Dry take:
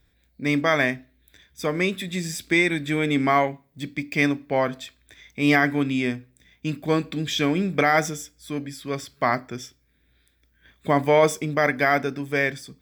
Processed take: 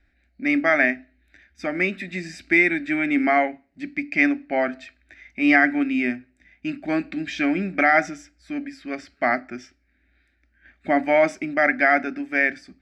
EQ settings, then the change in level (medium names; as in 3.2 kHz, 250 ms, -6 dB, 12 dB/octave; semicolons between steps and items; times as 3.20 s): resonant low-pass 3.4 kHz, resonance Q 3.6; static phaser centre 690 Hz, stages 8; +2.0 dB